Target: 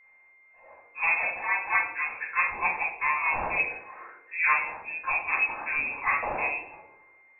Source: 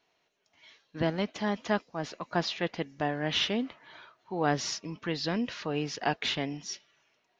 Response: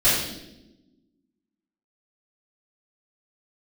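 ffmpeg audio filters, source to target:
-filter_complex "[0:a]lowpass=f=2.4k:t=q:w=0.5098,lowpass=f=2.4k:t=q:w=0.6013,lowpass=f=2.4k:t=q:w=0.9,lowpass=f=2.4k:t=q:w=2.563,afreqshift=-2800,acrossover=split=540 2000:gain=0.251 1 0.112[a][b][c];[a][b][c]amix=inputs=3:normalize=0[d];[1:a]atrim=start_sample=2205,asetrate=66150,aresample=44100[e];[d][e]afir=irnorm=-1:irlink=0,aeval=exprs='val(0)+0.00251*sin(2*PI*2100*n/s)':c=same,volume=-3.5dB"

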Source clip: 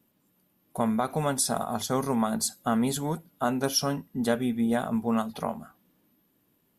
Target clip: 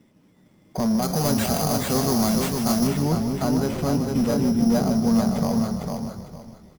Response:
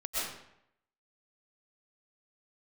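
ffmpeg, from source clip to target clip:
-filter_complex "[0:a]asoftclip=type=tanh:threshold=-26dB,alimiter=level_in=6.5dB:limit=-24dB:level=0:latency=1,volume=-6.5dB,tiltshelf=f=1.2k:g=6.5,asplit=2[a][b];[b]aecho=0:1:453|906|1359:0.596|0.131|0.0288[c];[a][c]amix=inputs=2:normalize=0,acrusher=samples=8:mix=1:aa=0.000001,asettb=1/sr,asplit=3[d][e][f];[d]atrim=end=1.024[g];[e]atrim=start=1.02:end=2.87,asetpts=PTS-STARTPTS,afade=t=in:d=0.004:c=qsin,afade=t=out:st=1.846:d=0.004:c=qsin,highshelf=f=3.9k:g=11.5[h];[f]atrim=start=2.866[i];[g][h]acrossfade=d=0.004:c1=hsin:c2=qsin[j];[j][i]acrossfade=d=0.004:c1=qsin:c2=hsin,asplit=2[k][l];[l]asplit=6[m][n][o][p][q][r];[m]adelay=152,afreqshift=-38,volume=-9dB[s];[n]adelay=304,afreqshift=-76,volume=-14.4dB[t];[o]adelay=456,afreqshift=-114,volume=-19.7dB[u];[p]adelay=608,afreqshift=-152,volume=-25.1dB[v];[q]adelay=760,afreqshift=-190,volume=-30.4dB[w];[r]adelay=912,afreqshift=-228,volume=-35.8dB[x];[s][t][u][v][w][x]amix=inputs=6:normalize=0[y];[k][y]amix=inputs=2:normalize=0,volume=7dB"

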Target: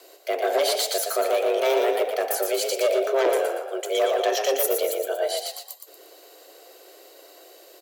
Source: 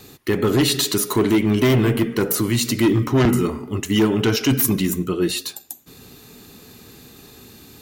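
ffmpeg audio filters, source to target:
-filter_complex "[0:a]afreqshift=270,asplit=5[a][b][c][d][e];[b]adelay=117,afreqshift=33,volume=-5dB[f];[c]adelay=234,afreqshift=66,volume=-13.9dB[g];[d]adelay=351,afreqshift=99,volume=-22.7dB[h];[e]adelay=468,afreqshift=132,volume=-31.6dB[i];[a][f][g][h][i]amix=inputs=5:normalize=0,volume=-6dB"

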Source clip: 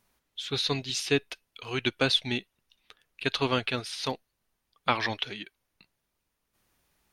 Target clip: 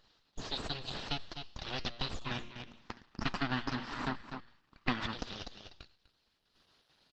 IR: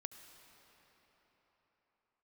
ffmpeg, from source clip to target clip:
-filter_complex "[0:a]bandreject=f=117.6:t=h:w=4,bandreject=f=235.2:t=h:w=4,bandreject=f=352.8:t=h:w=4,bandreject=f=470.4:t=h:w=4,bandreject=f=588:t=h:w=4,bandreject=f=705.6:t=h:w=4,bandreject=f=823.2:t=h:w=4,bandreject=f=940.8:t=h:w=4,bandreject=f=1.0584k:t=h:w=4,bandreject=f=1.176k:t=h:w=4,bandreject=f=1.2936k:t=h:w=4,bandreject=f=1.4112k:t=h:w=4,bandreject=f=1.5288k:t=h:w=4,bandreject=f=1.6464k:t=h:w=4,bandreject=f=1.764k:t=h:w=4,bandreject=f=1.8816k:t=h:w=4,bandreject=f=1.9992k:t=h:w=4,bandreject=f=2.1168k:t=h:w=4,bandreject=f=2.2344k:t=h:w=4,bandreject=f=2.352k:t=h:w=4,bandreject=f=2.4696k:t=h:w=4,bandreject=f=2.5872k:t=h:w=4,bandreject=f=2.7048k:t=h:w=4,bandreject=f=2.8224k:t=h:w=4,bandreject=f=2.94k:t=h:w=4,bandreject=f=3.0576k:t=h:w=4,bandreject=f=3.1752k:t=h:w=4,bandreject=f=3.2928k:t=h:w=4,bandreject=f=3.4104k:t=h:w=4,bandreject=f=3.528k:t=h:w=4,bandreject=f=3.6456k:t=h:w=4,bandreject=f=3.7632k:t=h:w=4,bandreject=f=3.8808k:t=h:w=4,bandreject=f=3.9984k:t=h:w=4,bandreject=f=4.116k:t=h:w=4,bandreject=f=4.2336k:t=h:w=4,bandreject=f=4.3512k:t=h:w=4,bandreject=f=4.4688k:t=h:w=4,bandreject=f=4.5864k:t=h:w=4,bandreject=f=4.704k:t=h:w=4,aeval=exprs='abs(val(0))':c=same,highshelf=f=5.8k:t=q:w=3:g=-10.5,bandreject=f=2.2k:w=5.8,aecho=1:1:248:0.168,acompressor=threshold=-45dB:ratio=3,asplit=3[a][b][c];[a]afade=t=out:st=2.24:d=0.02[d];[b]equalizer=f=250:t=o:w=1:g=11,equalizer=f=500:t=o:w=1:g=-8,equalizer=f=1k:t=o:w=1:g=8,equalizer=f=2k:t=o:w=1:g=7,equalizer=f=4k:t=o:w=1:g=-7,afade=t=in:st=2.24:d=0.02,afade=t=out:st=5.1:d=0.02[e];[c]afade=t=in:st=5.1:d=0.02[f];[d][e][f]amix=inputs=3:normalize=0,volume=9dB" -ar 48000 -c:a libopus -b:a 12k

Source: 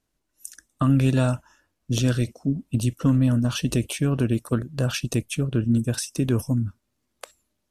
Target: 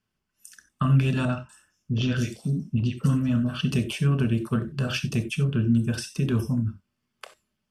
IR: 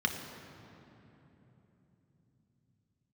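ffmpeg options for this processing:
-filter_complex "[0:a]asettb=1/sr,asplit=3[a][b][c];[a]atrim=end=1.254[d];[b]atrim=start=1.25:end=3.61,asetpts=PTS-STARTPTS,afade=t=in:d=0.004:c=qsin,afade=t=out:st=2.356:d=0.004:c=qsin,acrossover=split=970|5100[e][f][g];[f]adelay=40[h];[g]adelay=240[i];[e][h][i]amix=inputs=3:normalize=0,atrim=end_sample=104076[j];[c]atrim=start=3.606[k];[d][j]acrossfade=d=0.004:c1=hsin:c2=qsin[l];[l][k]acrossfade=d=0.004:c1=qsin:c2=hsin[m];[1:a]atrim=start_sample=2205,atrim=end_sample=3969,asetrate=40131,aresample=44100[n];[m][n]afir=irnorm=-1:irlink=0,volume=-8.5dB"

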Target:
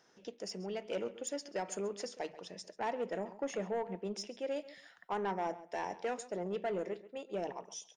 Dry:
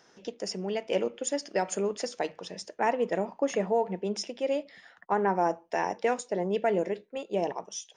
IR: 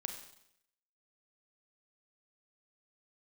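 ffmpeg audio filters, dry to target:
-filter_complex "[0:a]asettb=1/sr,asplit=3[a][b][c];[a]atrim=end=4.564[d];[b]atrim=start=4.56:end=5.35,asetpts=PTS-STARTPTS,afade=t=in:d=0.004:c=qsin,afade=t=out:st=0.786:d=0.004:c=qsin,highshelf=f=3.1k:g=10[e];[c]atrim=start=5.346[f];[d][e]acrossfade=d=0.004:c1=hsin:c2=qsin[g];[g][f]acrossfade=d=0.004:c1=qsin:c2=hsin,asoftclip=type=tanh:threshold=-21dB,asplit=2[h][i];[i]adelay=135,lowpass=f=4.8k:p=1,volume=-16dB,asplit=2[j][k];[k]adelay=135,lowpass=f=4.8k:p=1,volume=0.18[l];[j][l]amix=inputs=2:normalize=0[m];[h][m]amix=inputs=2:normalize=0,volume=-7.5dB"

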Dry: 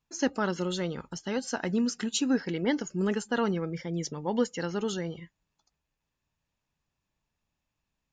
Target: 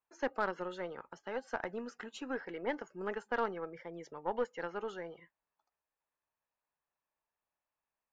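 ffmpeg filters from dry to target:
-filter_complex "[0:a]acrossover=split=440 2100:gain=0.0891 1 0.0794[a][b][c];[a][b][c]amix=inputs=3:normalize=0,aeval=exprs='0.112*(cos(1*acos(clip(val(0)/0.112,-1,1)))-cos(1*PI/2))+0.00794*(cos(4*acos(clip(val(0)/0.112,-1,1)))-cos(4*PI/2))+0.00158*(cos(7*acos(clip(val(0)/0.112,-1,1)))-cos(7*PI/2))':c=same,volume=-1.5dB"

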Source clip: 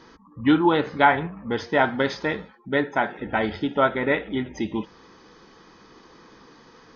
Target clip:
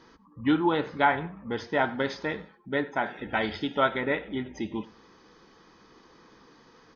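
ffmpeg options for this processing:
-filter_complex "[0:a]asettb=1/sr,asplit=3[a][b][c];[a]atrim=end=3.064[d];[b]atrim=start=3.06:end=4.01,asetpts=PTS-STARTPTS,afade=t=in:d=0.004:c=qsin,afade=t=out:st=0.946:d=0.004:c=qsin,highshelf=f=2.6k:g=11[e];[c]atrim=start=4.006[f];[d][e]acrossfade=d=0.004:c1=hsin:c2=qsin[g];[g][f]acrossfade=d=0.004:c1=qsin:c2=hsin,asplit=2[h][i];[i]adelay=95,lowpass=f=5k:p=1,volume=-20.5dB,asplit=2[j][k];[k]adelay=95,lowpass=f=5k:p=1,volume=0.28[l];[h][j][l]amix=inputs=3:normalize=0,volume=-5.5dB"

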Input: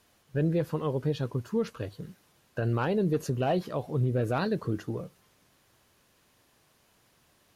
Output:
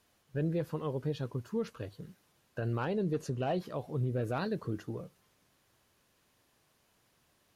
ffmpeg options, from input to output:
-filter_complex "[0:a]asettb=1/sr,asplit=3[a][b][c];[a]atrim=end=2.854[d];[b]atrim=start=2.85:end=3.6,asetpts=PTS-STARTPTS,afade=t=in:d=0.004:c=qsin,afade=t=out:st=0.746:d=0.004:c=qsin,lowpass=9.8k[e];[c]atrim=start=3.596[f];[d][e]acrossfade=d=0.004:c1=hsin:c2=qsin[g];[g][f]acrossfade=d=0.004:c1=qsin:c2=hsin,volume=-5.5dB"

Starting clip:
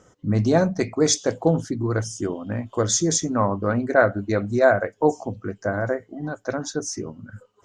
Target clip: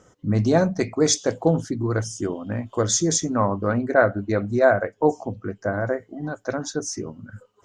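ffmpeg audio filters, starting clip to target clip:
-filter_complex "[0:a]asettb=1/sr,asplit=3[a][b][c];[a]atrim=end=3.784[d];[b]atrim=start=3.78:end=5.94,asetpts=PTS-STARTPTS,afade=t=in:d=0.004:c=qsin,afade=t=out:st=2.156:d=0.004:c=qsin,highshelf=f=4.3k:g=-7[e];[c]atrim=start=5.936[f];[d][e]acrossfade=d=0.004:c1=hsin:c2=qsin[g];[g][f]acrossfade=d=0.004:c1=qsin:c2=hsin"

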